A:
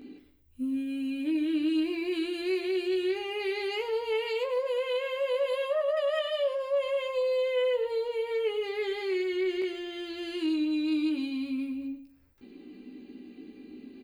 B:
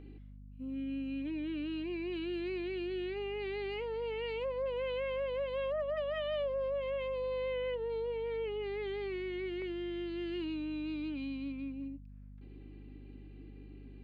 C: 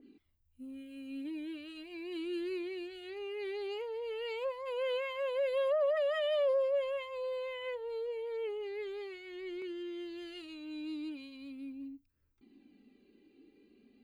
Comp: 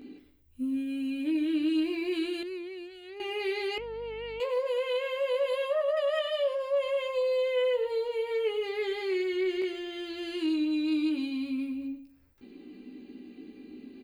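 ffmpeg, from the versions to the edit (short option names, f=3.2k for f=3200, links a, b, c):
-filter_complex "[0:a]asplit=3[a][b][c];[a]atrim=end=2.432[d];[2:a]atrim=start=2.428:end=3.202[e];[b]atrim=start=3.198:end=3.782[f];[1:a]atrim=start=3.778:end=4.402[g];[c]atrim=start=4.398[h];[d][e]acrossfade=d=0.004:c1=hsin:c2=hsin[i];[i][f]acrossfade=d=0.004:c1=hsin:c2=hsin[j];[j][g]acrossfade=d=0.004:c1=hsin:c2=hsin[k];[k][h]acrossfade=d=0.004:c1=hsin:c2=hsin"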